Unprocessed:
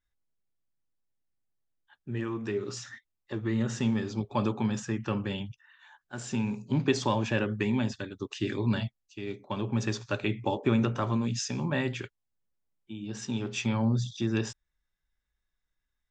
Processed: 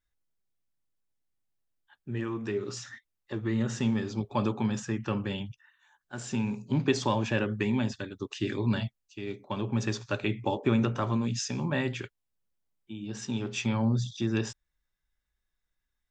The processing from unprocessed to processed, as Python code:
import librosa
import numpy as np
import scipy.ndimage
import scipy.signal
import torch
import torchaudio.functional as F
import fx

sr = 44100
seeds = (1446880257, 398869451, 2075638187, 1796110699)

y = fx.spec_box(x, sr, start_s=5.69, length_s=0.32, low_hz=510.0, high_hz=5600.0, gain_db=-9)